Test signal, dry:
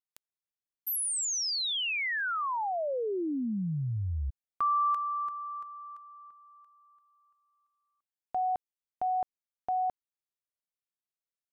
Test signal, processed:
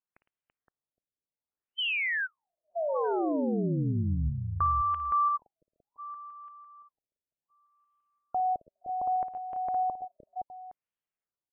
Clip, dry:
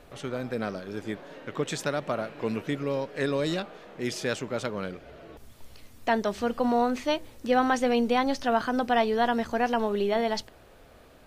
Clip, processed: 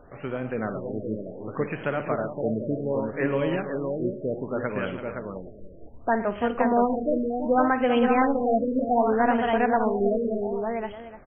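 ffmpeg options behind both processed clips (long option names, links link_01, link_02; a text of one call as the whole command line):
ffmpeg -i in.wav -filter_complex "[0:a]asplit=2[link_01][link_02];[link_02]aecho=0:1:55|109|334|517|815:0.224|0.15|0.299|0.596|0.141[link_03];[link_01][link_03]amix=inputs=2:normalize=0,afftfilt=real='re*lt(b*sr/1024,630*pow(3400/630,0.5+0.5*sin(2*PI*0.66*pts/sr)))':imag='im*lt(b*sr/1024,630*pow(3400/630,0.5+0.5*sin(2*PI*0.66*pts/sr)))':win_size=1024:overlap=0.75,volume=1.5dB" out.wav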